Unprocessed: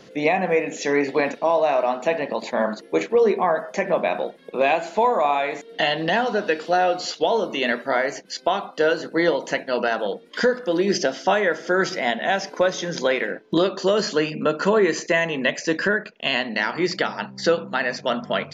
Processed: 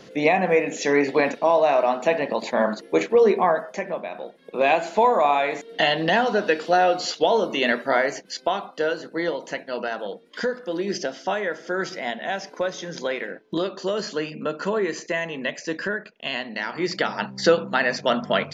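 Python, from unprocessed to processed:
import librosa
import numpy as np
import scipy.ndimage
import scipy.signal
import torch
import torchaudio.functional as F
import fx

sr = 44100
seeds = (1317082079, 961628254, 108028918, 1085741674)

y = fx.gain(x, sr, db=fx.line((3.48, 1.0), (4.1, -11.0), (4.72, 1.0), (8.0, 1.0), (9.09, -6.0), (16.61, -6.0), (17.23, 2.0)))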